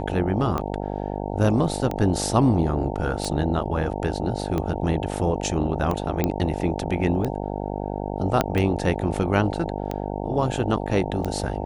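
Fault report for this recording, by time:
buzz 50 Hz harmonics 18 -29 dBFS
tick 45 rpm -14 dBFS
6.24 s: pop -8 dBFS
8.41 s: pop -6 dBFS

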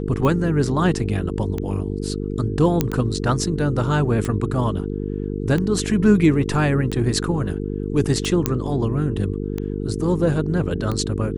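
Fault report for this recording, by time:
buzz 50 Hz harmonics 9 -26 dBFS
tick 45 rpm -13 dBFS
2.81 s: pop -4 dBFS
8.46 s: pop -3 dBFS

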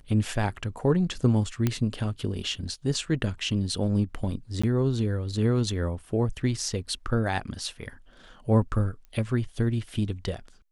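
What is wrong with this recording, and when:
1.67 s: pop -11 dBFS
4.62–4.63 s: dropout 15 ms
9.05 s: pop -34 dBFS

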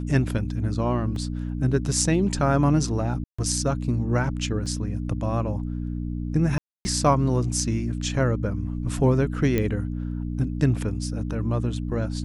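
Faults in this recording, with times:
hum 60 Hz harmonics 5 -29 dBFS
1.16 s: dropout 2.5 ms
3.24–3.38 s: dropout 145 ms
4.66 s: dropout 3.2 ms
6.58–6.85 s: dropout 270 ms
9.58 s: pop -11 dBFS

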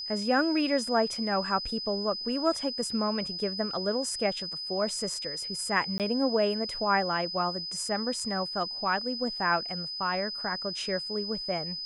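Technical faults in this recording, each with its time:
whine 5 kHz -34 dBFS
5.98–6.00 s: dropout 18 ms

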